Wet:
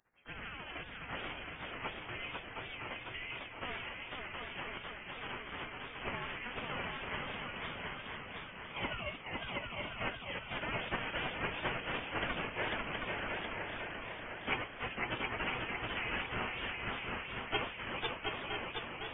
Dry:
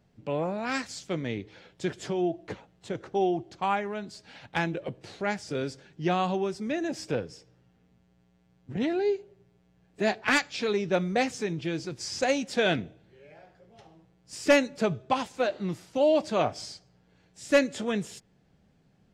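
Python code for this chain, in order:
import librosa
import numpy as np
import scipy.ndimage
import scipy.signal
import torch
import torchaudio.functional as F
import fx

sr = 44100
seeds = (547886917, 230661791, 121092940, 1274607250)

p1 = fx.pitch_heads(x, sr, semitones=4.0)
p2 = fx.spec_gate(p1, sr, threshold_db=-25, keep='weak')
p3 = fx.freq_invert(p2, sr, carrier_hz=3200)
p4 = p3 + fx.echo_swing(p3, sr, ms=960, ratio=3, feedback_pct=33, wet_db=-3.5, dry=0)
p5 = fx.echo_warbled(p4, sr, ms=501, feedback_pct=63, rate_hz=2.8, cents=182, wet_db=-3)
y = F.gain(torch.from_numpy(p5), 7.5).numpy()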